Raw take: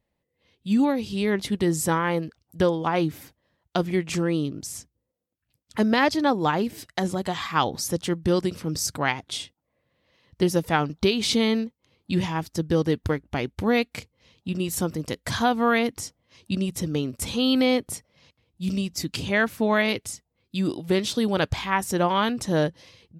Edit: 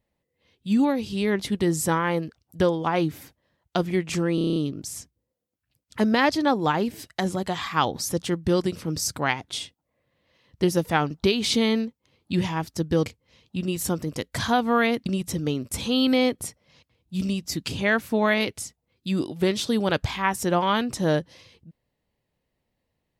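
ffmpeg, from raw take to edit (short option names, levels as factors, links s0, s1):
-filter_complex "[0:a]asplit=10[s0][s1][s2][s3][s4][s5][s6][s7][s8][s9];[s0]atrim=end=4.382[s10];[s1]atrim=start=4.348:end=4.382[s11];[s2]atrim=start=4.348:end=4.382[s12];[s3]atrim=start=4.348:end=4.382[s13];[s4]atrim=start=4.348:end=4.382[s14];[s5]atrim=start=4.348:end=4.382[s15];[s6]atrim=start=4.348:end=4.382[s16];[s7]atrim=start=4.348:end=12.852[s17];[s8]atrim=start=13.978:end=15.982[s18];[s9]atrim=start=16.538[s19];[s10][s11]acrossfade=d=0.004:c1=hsin:c2=hsin[s20];[s20][s12]acrossfade=d=0.004:c1=hsin:c2=hsin[s21];[s21][s13]acrossfade=d=0.004:c1=hsin:c2=hsin[s22];[s22][s14]acrossfade=d=0.004:c1=hsin:c2=hsin[s23];[s23][s15]acrossfade=d=0.004:c1=hsin:c2=hsin[s24];[s24][s16]acrossfade=d=0.004:c1=hsin:c2=hsin[s25];[s25][s17]acrossfade=d=0.004:c1=hsin:c2=hsin[s26];[s26][s18]acrossfade=d=0.004:c1=hsin:c2=hsin[s27];[s27][s19]acrossfade=d=0.004:c1=hsin:c2=hsin"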